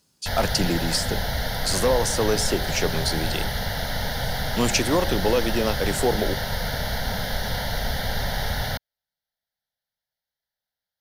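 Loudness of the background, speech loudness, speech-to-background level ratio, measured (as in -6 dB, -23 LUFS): -27.5 LUFS, -25.0 LUFS, 2.5 dB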